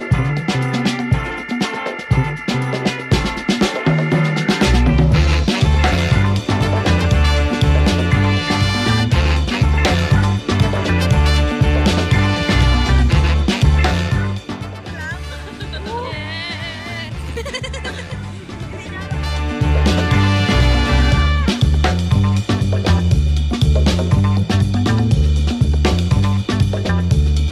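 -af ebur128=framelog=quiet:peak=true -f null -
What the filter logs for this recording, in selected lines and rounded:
Integrated loudness:
  I:         -16.4 LUFS
  Threshold: -26.7 LUFS
Loudness range:
  LRA:         9.9 LU
  Threshold: -36.6 LUFS
  LRA low:   -25.0 LUFS
  LRA high:  -15.0 LUFS
True peak:
  Peak:       -3.5 dBFS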